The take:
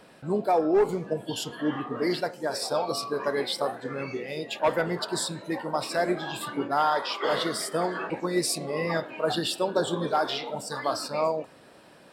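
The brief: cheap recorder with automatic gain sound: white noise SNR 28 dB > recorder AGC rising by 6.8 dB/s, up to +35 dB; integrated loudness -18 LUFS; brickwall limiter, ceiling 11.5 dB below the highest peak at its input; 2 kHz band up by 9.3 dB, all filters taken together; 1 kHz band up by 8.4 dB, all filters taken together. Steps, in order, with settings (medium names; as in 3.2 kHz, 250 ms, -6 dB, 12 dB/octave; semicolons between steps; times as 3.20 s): peaking EQ 1 kHz +9 dB; peaking EQ 2 kHz +8.5 dB; peak limiter -16 dBFS; white noise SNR 28 dB; recorder AGC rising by 6.8 dB/s, up to +35 dB; trim +8.5 dB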